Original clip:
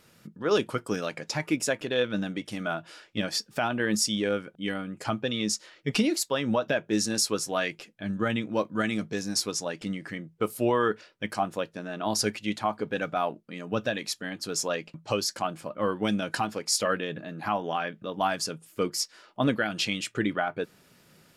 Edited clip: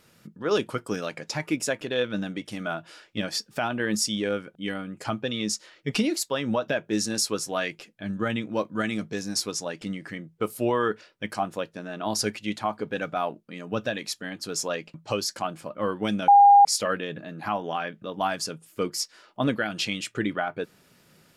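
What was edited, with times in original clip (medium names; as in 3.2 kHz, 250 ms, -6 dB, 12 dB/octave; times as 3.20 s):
16.28–16.65 s: bleep 808 Hz -10 dBFS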